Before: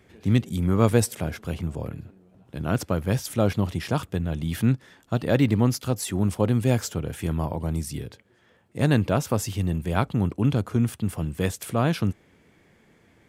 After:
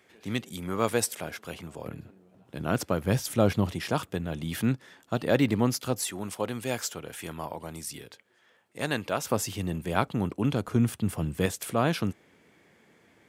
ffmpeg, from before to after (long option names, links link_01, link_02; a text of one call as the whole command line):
ffmpeg -i in.wav -af "asetnsamples=nb_out_samples=441:pad=0,asendcmd='1.86 highpass f 210;3.05 highpass f 99;3.73 highpass f 260;6.07 highpass f 870;9.25 highpass f 260;10.68 highpass f 99;11.46 highpass f 240',highpass=frequency=690:poles=1" out.wav